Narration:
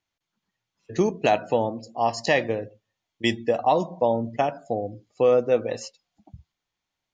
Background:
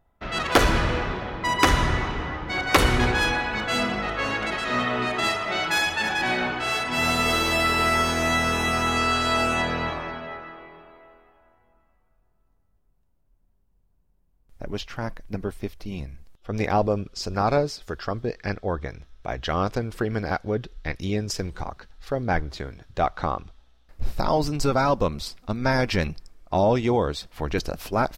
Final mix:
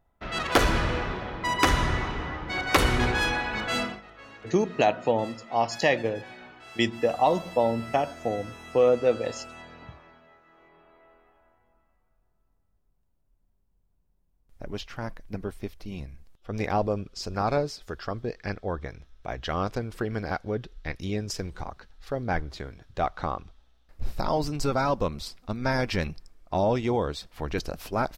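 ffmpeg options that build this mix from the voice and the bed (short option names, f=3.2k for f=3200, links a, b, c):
-filter_complex "[0:a]adelay=3550,volume=-1.5dB[a];[1:a]volume=14dB,afade=t=out:st=3.77:d=0.24:silence=0.125893,afade=t=in:st=10.44:d=0.88:silence=0.141254[b];[a][b]amix=inputs=2:normalize=0"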